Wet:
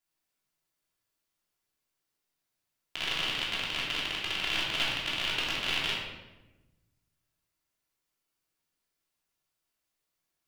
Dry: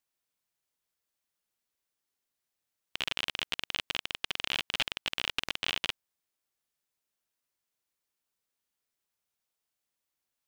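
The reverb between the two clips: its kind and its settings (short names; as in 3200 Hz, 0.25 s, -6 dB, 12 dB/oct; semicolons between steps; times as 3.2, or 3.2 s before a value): shoebox room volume 560 m³, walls mixed, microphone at 3.1 m; gain -4 dB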